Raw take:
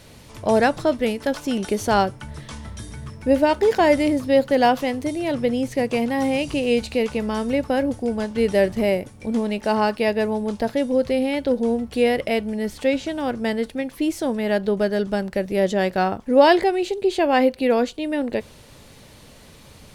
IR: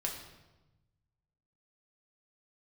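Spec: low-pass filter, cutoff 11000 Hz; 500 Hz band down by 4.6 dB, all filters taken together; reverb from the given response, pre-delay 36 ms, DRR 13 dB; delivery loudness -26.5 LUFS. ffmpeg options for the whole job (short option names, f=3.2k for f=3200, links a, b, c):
-filter_complex "[0:a]lowpass=11k,equalizer=f=500:t=o:g=-5.5,asplit=2[a][b];[1:a]atrim=start_sample=2205,adelay=36[c];[b][c]afir=irnorm=-1:irlink=0,volume=-15dB[d];[a][d]amix=inputs=2:normalize=0,volume=-2.5dB"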